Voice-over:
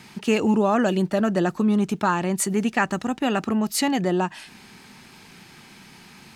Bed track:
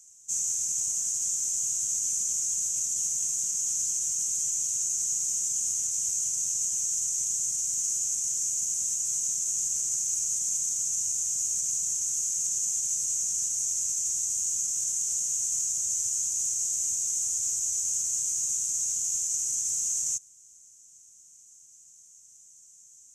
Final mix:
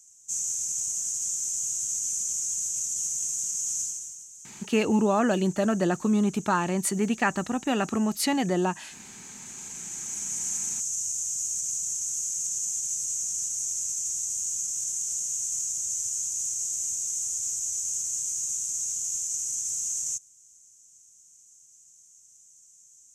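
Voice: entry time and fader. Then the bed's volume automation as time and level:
4.45 s, -3.0 dB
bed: 3.81 s -1 dB
4.29 s -18 dB
9.14 s -18 dB
10.44 s -1.5 dB

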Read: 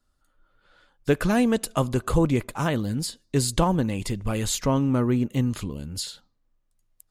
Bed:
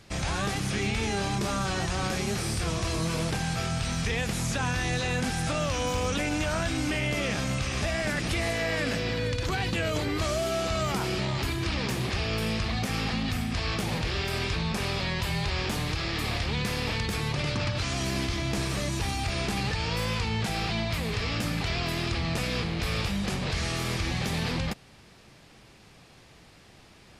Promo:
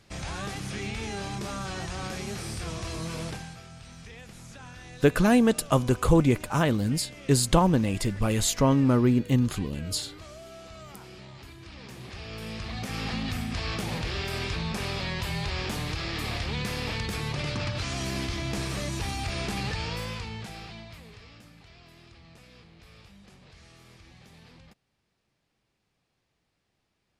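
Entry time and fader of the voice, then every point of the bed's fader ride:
3.95 s, +1.0 dB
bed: 3.29 s -5.5 dB
3.62 s -17 dB
11.64 s -17 dB
13.13 s -2 dB
19.79 s -2 dB
21.53 s -23.5 dB

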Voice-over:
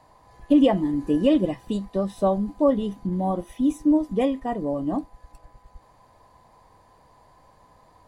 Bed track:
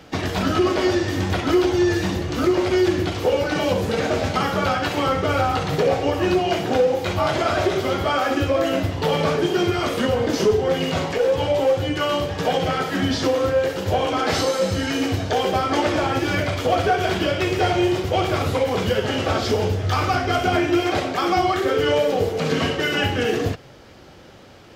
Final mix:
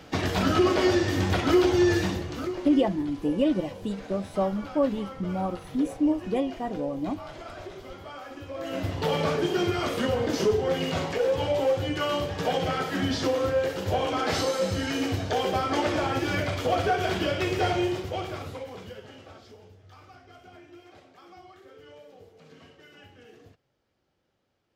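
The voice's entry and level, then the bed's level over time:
2.15 s, -4.5 dB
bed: 1.98 s -2.5 dB
2.86 s -20.5 dB
8.43 s -20.5 dB
8.9 s -5.5 dB
17.72 s -5.5 dB
19.62 s -30.5 dB

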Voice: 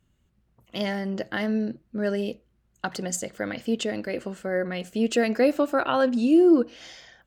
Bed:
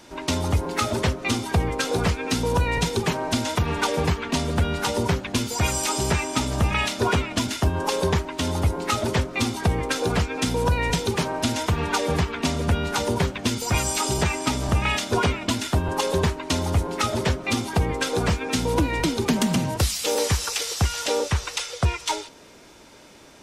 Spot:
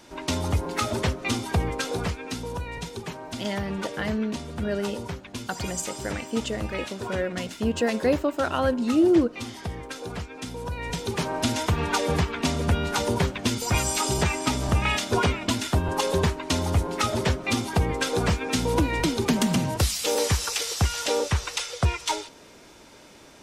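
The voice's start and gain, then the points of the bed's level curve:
2.65 s, -2.0 dB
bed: 1.68 s -2.5 dB
2.64 s -11.5 dB
10.67 s -11.5 dB
11.34 s -1 dB

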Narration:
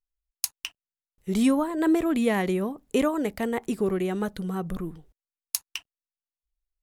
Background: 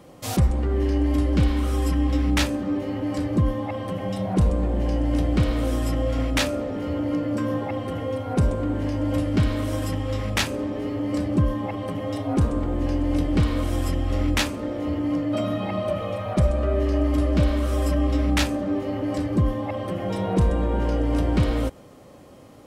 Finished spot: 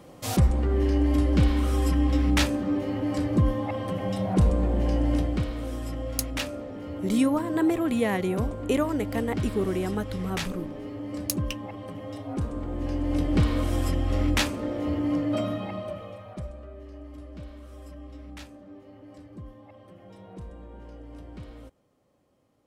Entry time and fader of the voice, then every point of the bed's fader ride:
5.75 s, -1.5 dB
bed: 5.11 s -1 dB
5.5 s -9 dB
12.48 s -9 dB
13.35 s -1.5 dB
15.33 s -1.5 dB
16.75 s -21.5 dB

